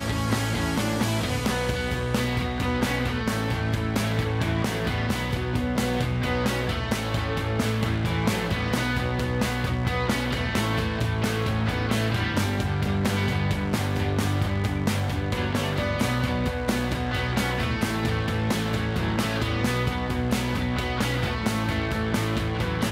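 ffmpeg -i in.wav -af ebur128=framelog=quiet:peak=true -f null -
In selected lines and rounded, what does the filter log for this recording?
Integrated loudness:
  I:         -25.7 LUFS
  Threshold: -35.7 LUFS
Loudness range:
  LRA:         0.7 LU
  Threshold: -45.7 LUFS
  LRA low:   -26.0 LUFS
  LRA high:  -25.3 LUFS
True peak:
  Peak:       -8.9 dBFS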